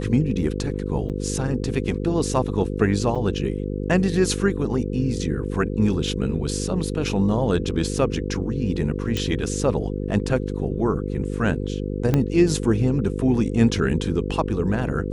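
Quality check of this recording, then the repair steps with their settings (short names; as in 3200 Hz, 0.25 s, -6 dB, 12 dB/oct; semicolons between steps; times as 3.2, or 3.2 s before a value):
buzz 50 Hz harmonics 10 -27 dBFS
1.09–1.1 gap 7.9 ms
3.15–3.16 gap 6 ms
9.17 pop -13 dBFS
12.14 pop -8 dBFS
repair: de-click; de-hum 50 Hz, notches 10; interpolate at 1.09, 7.9 ms; interpolate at 3.15, 6 ms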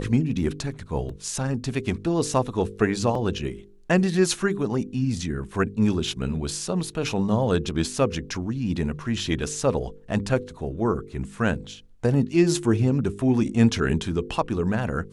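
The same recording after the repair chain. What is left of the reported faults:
12.14 pop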